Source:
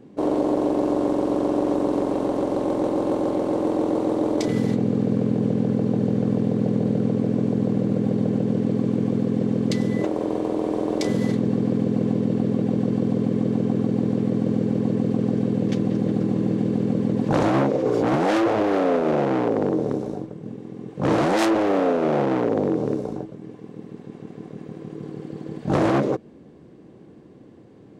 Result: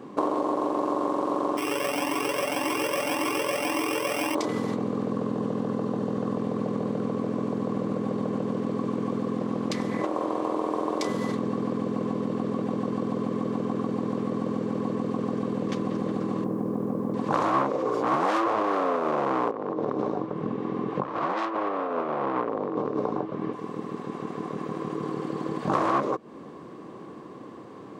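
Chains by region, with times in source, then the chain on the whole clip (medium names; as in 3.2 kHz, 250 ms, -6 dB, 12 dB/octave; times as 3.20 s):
1.57–4.35 s: sorted samples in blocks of 16 samples + comb 7 ms, depth 35% + Shepard-style flanger rising 1.8 Hz
5.11–6.37 s: high-pass 48 Hz + band-stop 2.3 kHz
9.37–10.54 s: band-stop 420 Hz, Q 14 + loudspeaker Doppler distortion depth 0.23 ms
16.44–17.14 s: low-pass 1.1 kHz + word length cut 10-bit, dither none
19.51–23.53 s: low-pass 3.5 kHz + compressor with a negative ratio -27 dBFS, ratio -0.5
whole clip: high-pass 320 Hz 6 dB/octave; compression, threshold -33 dBFS; peaking EQ 1.1 kHz +14.5 dB 0.44 oct; trim +7.5 dB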